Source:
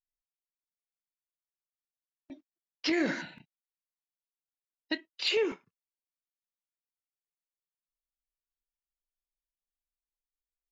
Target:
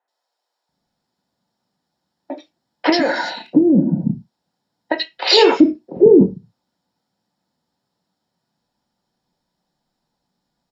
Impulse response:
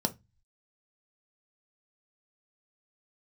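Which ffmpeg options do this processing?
-filter_complex "[0:a]aemphasis=mode=reproduction:type=75kf,acrossover=split=480|2300[a][b][c];[c]adelay=80[d];[a]adelay=690[e];[e][b][d]amix=inputs=3:normalize=0,asettb=1/sr,asplit=3[f][g][h];[f]atrim=end=2.894[i];[g]atrim=start=2.89:end=5.25,asetpts=PTS-STARTPTS,afade=t=in:d=0.004:c=qsin,afade=t=out:st=2.356:d=0.004:c=qsin,acompressor=threshold=-44dB:ratio=12[j];[h]atrim=start=5.246[k];[i][j]acrossfade=d=0.004:c1=hsin:c2=qsin[l];[l][k]acrossfade=d=0.004:c1=qsin:c2=hsin[m];[1:a]atrim=start_sample=2205,atrim=end_sample=6174,asetrate=41895,aresample=44100[n];[m][n]afir=irnorm=-1:irlink=0,alimiter=level_in=23dB:limit=-1dB:release=50:level=0:latency=1,volume=-1dB"

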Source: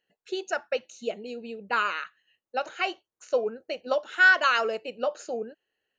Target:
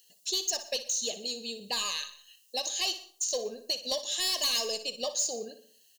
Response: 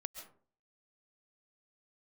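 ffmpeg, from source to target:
-filter_complex "[0:a]aexciter=amount=10.7:drive=9.5:freq=3.5k,asoftclip=type=tanh:threshold=-15dB,asuperstop=centerf=1400:order=20:qfactor=4.2,aecho=1:1:60|120|180:0.224|0.0784|0.0274,acompressor=threshold=-46dB:ratio=1.5,asplit=2[a][b];[1:a]atrim=start_sample=2205[c];[b][c]afir=irnorm=-1:irlink=0,volume=-10dB[d];[a][d]amix=inputs=2:normalize=0"

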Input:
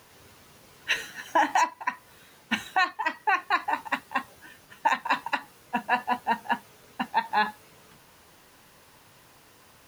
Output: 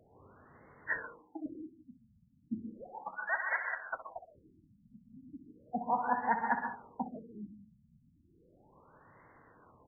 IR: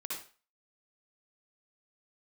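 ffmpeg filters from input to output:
-filter_complex "[0:a]asettb=1/sr,asplit=3[a][b][c];[a]atrim=end=1.024[d];[b]atrim=start=1.02:end=1.46,asetpts=PTS-STARTPTS,afade=t=in:d=0.004:c=qsin,afade=t=out:st=0.436:d=0.004:c=qsin,asplit=3[e][f][g];[e]bandpass=f=300:t=q:w=8,volume=0dB[h];[f]bandpass=f=870:t=q:w=8,volume=-6dB[i];[g]bandpass=f=2.24k:t=q:w=8,volume=-9dB[j];[h][i][j]amix=inputs=3:normalize=0[k];[c]atrim=start=1.456[l];[d][k]acrossfade=d=0.004:c1=hsin:c2=qsin[m];[m][l]acrossfade=d=0.004:c1=qsin:c2=hsin,asettb=1/sr,asplit=3[n][o][p];[n]atrim=end=2.624[q];[o]atrim=start=2.62:end=4.35,asetpts=PTS-STARTPTS,afade=t=in:d=0.004:c=qsin,afade=t=out:st=1.726:d=0.004:c=qsin,lowpass=f=2.9k:t=q:w=0.5098,lowpass=f=2.9k:t=q:w=0.6013,lowpass=f=2.9k:t=q:w=0.9,lowpass=f=2.9k:t=q:w=2.563,afreqshift=-3400[r];[p]atrim=start=4.346[s];[q][r]acrossfade=d=0.004:c1=hsin:c2=qsin[t];[t][s]acrossfade=d=0.004:c1=qsin:c2=hsin,aecho=1:1:74|148|222|296|370:0.158|0.0872|0.0479|0.0264|0.0145,asplit=2[u][v];[1:a]atrim=start_sample=2205,adelay=63[w];[v][w]afir=irnorm=-1:irlink=0,volume=-4.5dB[x];[u][x]amix=inputs=2:normalize=0,afftfilt=real='re*lt(b*sr/1024,240*pow(2200/240,0.5+0.5*sin(2*PI*0.35*pts/sr)))':imag='im*lt(b*sr/1024,240*pow(2200/240,0.5+0.5*sin(2*PI*0.35*pts/sr)))':win_size=1024:overlap=0.75,volume=-4.5dB"

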